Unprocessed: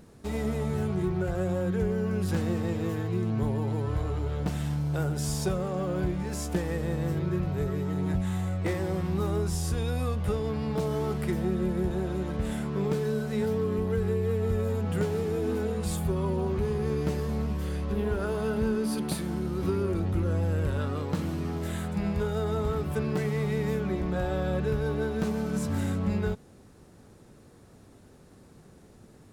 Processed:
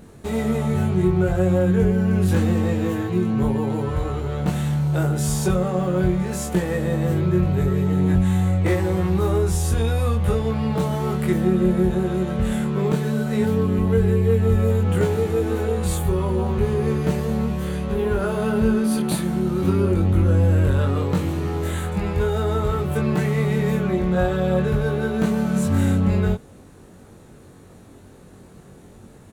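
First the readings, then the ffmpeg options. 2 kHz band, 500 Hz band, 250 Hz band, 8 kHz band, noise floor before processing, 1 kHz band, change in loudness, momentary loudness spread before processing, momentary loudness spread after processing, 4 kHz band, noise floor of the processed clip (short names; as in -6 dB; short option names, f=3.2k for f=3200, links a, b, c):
+8.0 dB, +7.0 dB, +9.0 dB, +7.5 dB, -54 dBFS, +8.0 dB, +8.5 dB, 3 LU, 5 LU, +6.5 dB, -46 dBFS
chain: -filter_complex "[0:a]equalizer=f=5.1k:w=4.4:g=-7,asplit=2[a][b];[b]adelay=22,volume=-2.5dB[c];[a][c]amix=inputs=2:normalize=0,volume=6dB"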